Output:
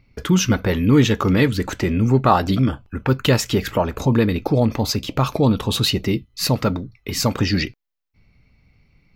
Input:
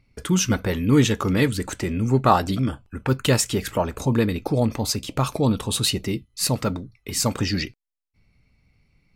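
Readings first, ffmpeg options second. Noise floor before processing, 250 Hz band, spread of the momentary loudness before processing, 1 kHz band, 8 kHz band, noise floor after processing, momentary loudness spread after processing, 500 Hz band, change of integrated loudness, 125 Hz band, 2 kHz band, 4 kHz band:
-67 dBFS, +4.0 dB, 9 LU, +2.5 dB, -2.5 dB, -62 dBFS, 7 LU, +3.5 dB, +3.0 dB, +4.0 dB, +3.5 dB, +3.0 dB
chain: -filter_complex "[0:a]equalizer=f=8900:t=o:w=0.65:g=-14.5,asplit=2[s0][s1];[s1]alimiter=limit=0.188:level=0:latency=1:release=205,volume=1.12[s2];[s0][s2]amix=inputs=2:normalize=0,volume=0.891"

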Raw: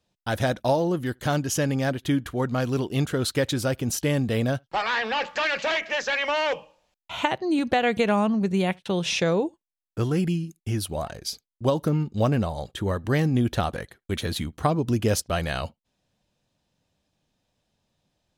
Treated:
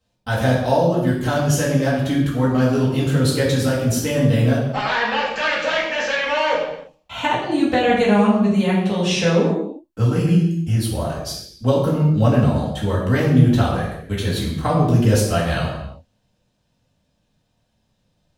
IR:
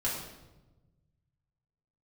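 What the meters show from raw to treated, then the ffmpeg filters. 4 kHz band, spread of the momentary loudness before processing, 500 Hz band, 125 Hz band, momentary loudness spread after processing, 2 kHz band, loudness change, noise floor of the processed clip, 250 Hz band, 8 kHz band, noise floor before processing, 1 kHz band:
+4.0 dB, 8 LU, +6.0 dB, +9.0 dB, 9 LU, +5.0 dB, +6.5 dB, -68 dBFS, +7.5 dB, +3.5 dB, under -85 dBFS, +5.0 dB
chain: -filter_complex "[1:a]atrim=start_sample=2205,afade=t=out:st=0.41:d=0.01,atrim=end_sample=18522[s0];[0:a][s0]afir=irnorm=-1:irlink=0,volume=0.891"

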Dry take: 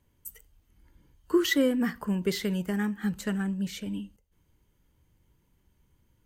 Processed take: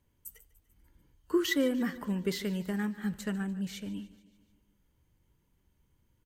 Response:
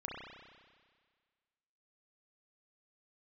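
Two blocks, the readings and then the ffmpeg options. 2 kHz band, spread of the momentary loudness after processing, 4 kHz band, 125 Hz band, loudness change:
-4.0 dB, 19 LU, -4.0 dB, -4.0 dB, -4.0 dB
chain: -af "aecho=1:1:147|294|441|588|735:0.119|0.0689|0.04|0.0232|0.0134,volume=0.631"

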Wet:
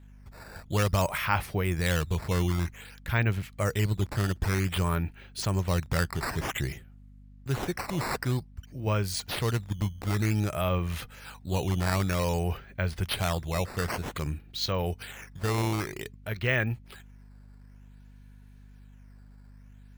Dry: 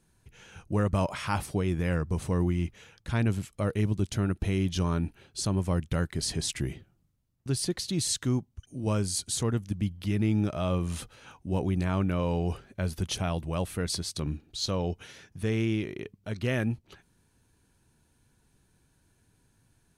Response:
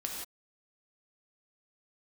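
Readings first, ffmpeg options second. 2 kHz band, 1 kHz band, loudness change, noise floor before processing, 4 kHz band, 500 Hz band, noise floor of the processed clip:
+7.0 dB, +4.5 dB, +0.5 dB, -69 dBFS, +0.5 dB, +0.5 dB, -51 dBFS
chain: -af "equalizer=f=250:t=o:w=1:g=-9,equalizer=f=2000:t=o:w=1:g=7,equalizer=f=8000:t=o:w=1:g=-8,acrusher=samples=8:mix=1:aa=0.000001:lfo=1:lforange=12.8:lforate=0.53,aeval=exprs='val(0)+0.00251*(sin(2*PI*50*n/s)+sin(2*PI*2*50*n/s)/2+sin(2*PI*3*50*n/s)/3+sin(2*PI*4*50*n/s)/4+sin(2*PI*5*50*n/s)/5)':c=same,volume=1.33"

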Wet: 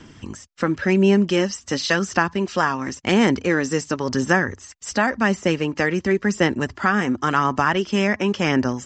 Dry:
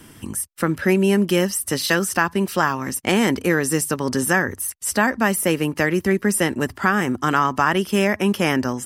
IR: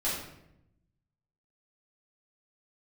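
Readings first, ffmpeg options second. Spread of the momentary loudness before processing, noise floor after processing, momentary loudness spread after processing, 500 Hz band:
4 LU, -48 dBFS, 7 LU, -0.5 dB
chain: -af "aphaser=in_gain=1:out_gain=1:delay=4.3:decay=0.3:speed=0.93:type=sinusoidal,aresample=16000,aresample=44100,volume=0.891"

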